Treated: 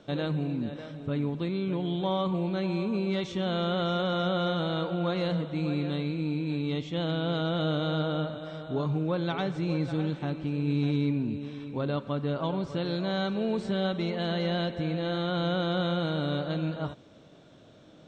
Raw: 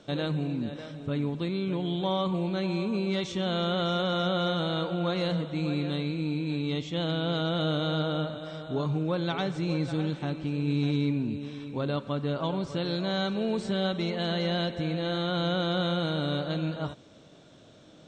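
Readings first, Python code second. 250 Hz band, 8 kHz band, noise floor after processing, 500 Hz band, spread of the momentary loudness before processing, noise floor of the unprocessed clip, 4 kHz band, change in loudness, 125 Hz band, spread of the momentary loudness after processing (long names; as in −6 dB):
0.0 dB, can't be measured, −53 dBFS, 0.0 dB, 5 LU, −53 dBFS, −3.0 dB, −0.5 dB, 0.0 dB, 4 LU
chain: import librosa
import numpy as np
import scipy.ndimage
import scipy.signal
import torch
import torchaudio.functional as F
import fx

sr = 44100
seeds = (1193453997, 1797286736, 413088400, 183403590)

y = fx.high_shelf(x, sr, hz=4800.0, db=-9.0)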